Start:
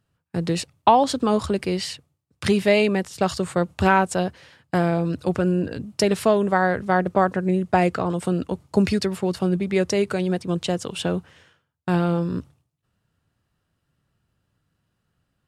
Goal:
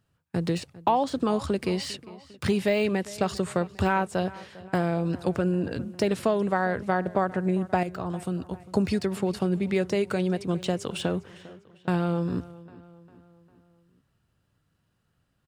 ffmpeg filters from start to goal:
-filter_complex "[0:a]deesser=0.7,asettb=1/sr,asplit=3[a][b][c];[a]atrim=end=7.834[d];[b]atrim=start=7.83:end=8.6,asetpts=PTS-STARTPTS,afade=t=in:d=0.004:c=qsin,afade=t=out:st=0.766:d=0.004:c=qsin,equalizer=f=125:t=o:w=1:g=-4,equalizer=f=250:t=o:w=1:g=-6,equalizer=f=500:t=o:w=1:g=-9,equalizer=f=1k:t=o:w=1:g=-4,equalizer=f=2k:t=o:w=1:g=-9,equalizer=f=4k:t=o:w=1:g=-4,equalizer=f=8k:t=o:w=1:g=-6[e];[c]atrim=start=8.596[f];[d][e]acrossfade=d=0.004:c1=hsin:c2=qsin[g];[g][f]acrossfade=d=0.004:c1=qsin:c2=hsin,acompressor=threshold=-24dB:ratio=2,asplit=2[h][i];[i]adelay=401,lowpass=f=4.8k:p=1,volume=-19dB,asplit=2[j][k];[k]adelay=401,lowpass=f=4.8k:p=1,volume=0.52,asplit=2[l][m];[m]adelay=401,lowpass=f=4.8k:p=1,volume=0.52,asplit=2[n][o];[o]adelay=401,lowpass=f=4.8k:p=1,volume=0.52[p];[h][j][l][n][p]amix=inputs=5:normalize=0"

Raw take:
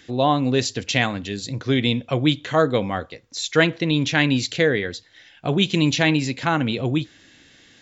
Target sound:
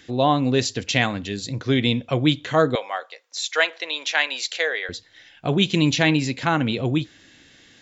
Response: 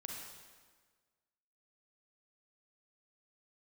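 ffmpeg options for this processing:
-filter_complex "[0:a]asettb=1/sr,asplit=3[a][b][c];[a]atrim=end=2.754[d];[b]atrim=start=2.75:end=4.89,asetpts=PTS-STARTPTS,afade=t=in:d=0.004:c=qsin,afade=t=out:st=2.136:d=0.004:c=qsin,highpass=f=580:w=0.5412,highpass=f=580:w=1.3066[e];[c]atrim=start=4.886[f];[d][e]acrossfade=d=0.004:c1=hsin:c2=qsin[g];[g][f]acrossfade=d=0.004:c1=qsin:c2=hsin"

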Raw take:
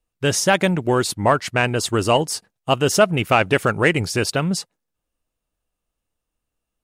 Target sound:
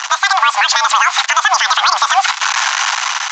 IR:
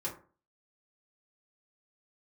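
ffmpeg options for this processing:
-filter_complex "[0:a]aeval=exprs='val(0)+0.5*0.0631*sgn(val(0))':c=same,acompressor=threshold=-22dB:ratio=4,asplit=2[a][b];[1:a]atrim=start_sample=2205,highshelf=f=4k:g=3[c];[b][c]afir=irnorm=-1:irlink=0,volume=-19dB[d];[a][d]amix=inputs=2:normalize=0,asoftclip=type=tanh:threshold=-12.5dB,highpass=f=220:t=q:w=0.5412,highpass=f=220:t=q:w=1.307,lowpass=f=3.4k:t=q:w=0.5176,lowpass=f=3.4k:t=q:w=0.7071,lowpass=f=3.4k:t=q:w=1.932,afreqshift=190,dynaudnorm=f=510:g=5:m=7dB,asetrate=90846,aresample=44100,highshelf=f=2.8k:g=-2,alimiter=level_in=17dB:limit=-1dB:release=50:level=0:latency=1,volume=-1dB" -ar 16000 -c:a pcm_mulaw

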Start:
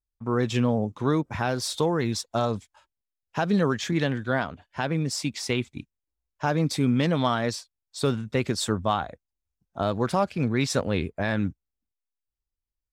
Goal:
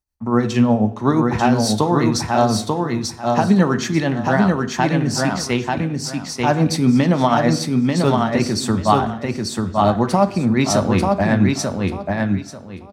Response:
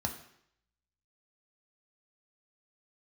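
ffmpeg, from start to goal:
-filter_complex "[0:a]tremolo=f=8.3:d=0.52,aecho=1:1:890|1780|2670:0.708|0.156|0.0343,asplit=2[a][b];[1:a]atrim=start_sample=2205,lowshelf=f=79:g=-6.5[c];[b][c]afir=irnorm=-1:irlink=0,volume=-5dB[d];[a][d]amix=inputs=2:normalize=0,volume=5dB"

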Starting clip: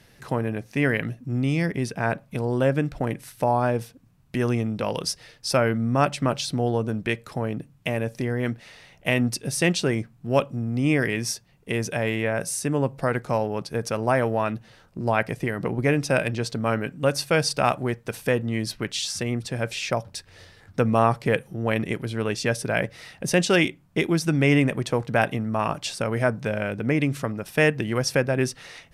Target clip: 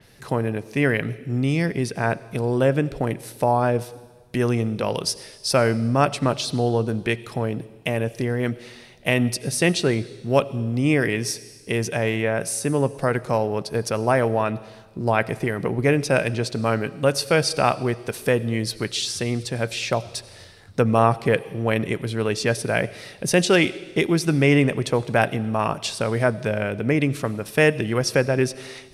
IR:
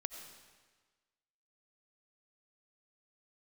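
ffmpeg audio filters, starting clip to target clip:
-filter_complex "[0:a]asplit=2[a][b];[b]equalizer=f=100:t=o:w=0.67:g=10,equalizer=f=400:t=o:w=0.67:g=11,equalizer=f=1.6k:t=o:w=0.67:g=-4,equalizer=f=4k:t=o:w=0.67:g=8,equalizer=f=10k:t=o:w=0.67:g=10[c];[1:a]atrim=start_sample=2205,lowshelf=f=450:g=-6.5[d];[c][d]afir=irnorm=-1:irlink=0,volume=-8.5dB[e];[a][e]amix=inputs=2:normalize=0,adynamicequalizer=threshold=0.0178:dfrequency=4000:dqfactor=0.7:tfrequency=4000:tqfactor=0.7:attack=5:release=100:ratio=0.375:range=2.5:mode=cutabove:tftype=highshelf"

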